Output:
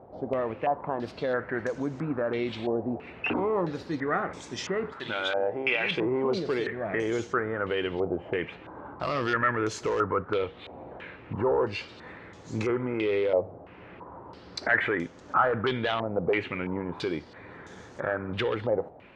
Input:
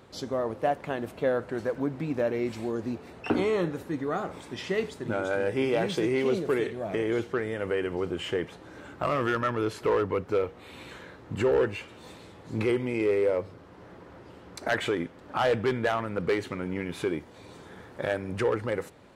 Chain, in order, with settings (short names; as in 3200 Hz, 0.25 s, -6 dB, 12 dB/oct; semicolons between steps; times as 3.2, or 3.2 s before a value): 4.92–5.91 tilt shelf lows -9 dB, about 680 Hz; limiter -20.5 dBFS, peak gain reduction 9.5 dB; stepped low-pass 3 Hz 720–6500 Hz